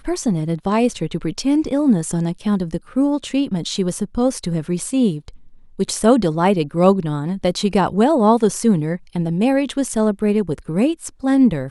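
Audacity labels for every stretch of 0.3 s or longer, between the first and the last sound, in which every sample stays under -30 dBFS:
5.290000	5.790000	silence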